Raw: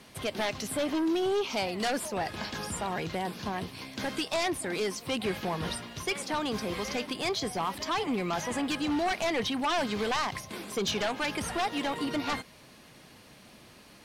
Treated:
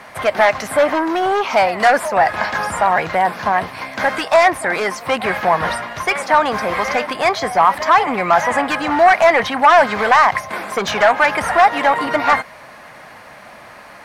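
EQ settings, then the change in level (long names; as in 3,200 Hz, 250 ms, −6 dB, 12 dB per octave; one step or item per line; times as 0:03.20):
flat-topped bell 1,100 Hz +14 dB 2.3 octaves
+6.0 dB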